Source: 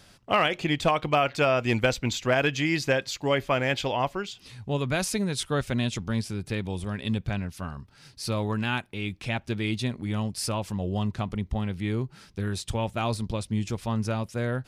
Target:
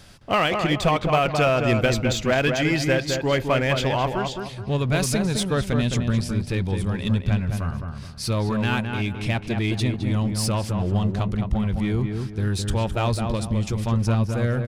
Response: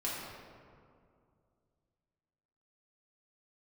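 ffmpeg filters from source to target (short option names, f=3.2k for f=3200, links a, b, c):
-filter_complex "[0:a]lowshelf=f=110:g=7,asplit=2[a][b];[b]volume=28.5dB,asoftclip=hard,volume=-28.5dB,volume=-3dB[c];[a][c]amix=inputs=2:normalize=0,asplit=2[d][e];[e]adelay=212,lowpass=f=1.8k:p=1,volume=-4.5dB,asplit=2[f][g];[g]adelay=212,lowpass=f=1.8k:p=1,volume=0.38,asplit=2[h][i];[i]adelay=212,lowpass=f=1.8k:p=1,volume=0.38,asplit=2[j][k];[k]adelay=212,lowpass=f=1.8k:p=1,volume=0.38,asplit=2[l][m];[m]adelay=212,lowpass=f=1.8k:p=1,volume=0.38[n];[d][f][h][j][l][n]amix=inputs=6:normalize=0"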